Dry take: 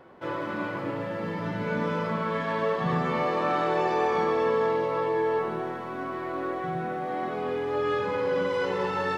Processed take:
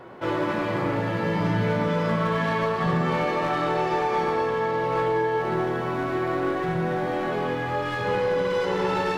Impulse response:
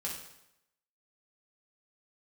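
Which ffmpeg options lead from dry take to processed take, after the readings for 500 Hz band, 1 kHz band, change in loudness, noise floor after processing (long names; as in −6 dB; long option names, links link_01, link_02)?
+2.0 dB, +3.0 dB, +3.0 dB, −28 dBFS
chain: -filter_complex "[0:a]acompressor=threshold=-28dB:ratio=10,aeval=exprs='clip(val(0),-1,0.0355)':channel_layout=same,asplit=2[link_01][link_02];[1:a]atrim=start_sample=2205,asetrate=31311,aresample=44100[link_03];[link_02][link_03]afir=irnorm=-1:irlink=0,volume=-2.5dB[link_04];[link_01][link_04]amix=inputs=2:normalize=0,volume=3.5dB"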